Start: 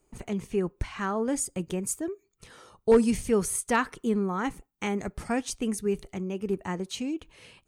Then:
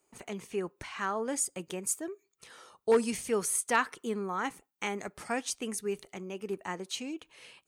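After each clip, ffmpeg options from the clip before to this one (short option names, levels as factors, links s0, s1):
-af "highpass=f=630:p=1"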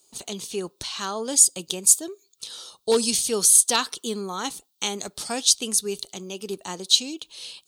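-af "highshelf=f=2800:t=q:w=3:g=11,volume=1.58"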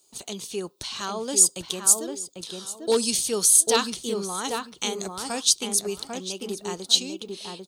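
-filter_complex "[0:a]asplit=2[s0][s1];[s1]adelay=796,lowpass=f=1400:p=1,volume=0.708,asplit=2[s2][s3];[s3]adelay=796,lowpass=f=1400:p=1,volume=0.23,asplit=2[s4][s5];[s5]adelay=796,lowpass=f=1400:p=1,volume=0.23[s6];[s0][s2][s4][s6]amix=inputs=4:normalize=0,volume=0.841"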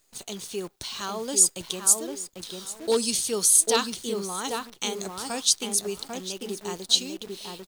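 -af "acrusher=bits=8:dc=4:mix=0:aa=0.000001,volume=0.841"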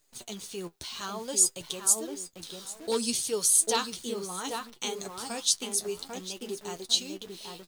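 -af "flanger=delay=6.6:depth=6.3:regen=39:speed=0.6:shape=triangular"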